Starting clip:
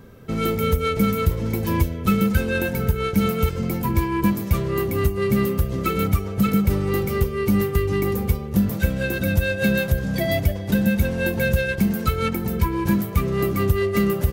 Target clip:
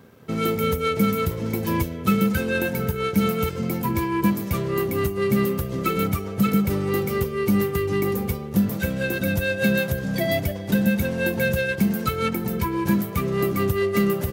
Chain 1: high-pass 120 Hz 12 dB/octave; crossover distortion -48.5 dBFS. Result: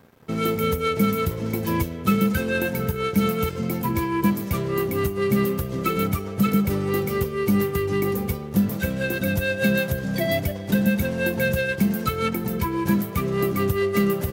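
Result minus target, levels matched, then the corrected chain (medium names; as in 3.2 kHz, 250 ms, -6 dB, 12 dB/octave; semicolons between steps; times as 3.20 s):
crossover distortion: distortion +6 dB
high-pass 120 Hz 12 dB/octave; crossover distortion -55 dBFS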